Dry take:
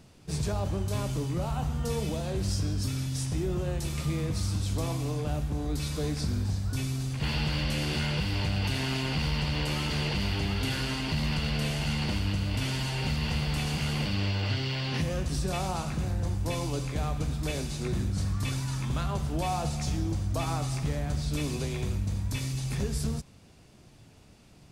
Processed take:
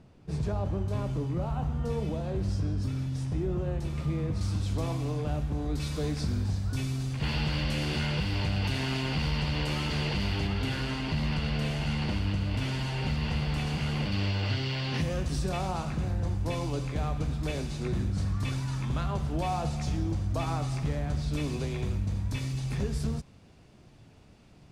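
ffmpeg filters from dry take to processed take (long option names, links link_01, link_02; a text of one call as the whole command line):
ffmpeg -i in.wav -af "asetnsamples=nb_out_samples=441:pad=0,asendcmd='4.41 lowpass f 3300;5.8 lowpass f 5300;10.47 lowpass f 2900;14.12 lowpass f 6500;15.49 lowpass f 3400',lowpass=frequency=1300:poles=1" out.wav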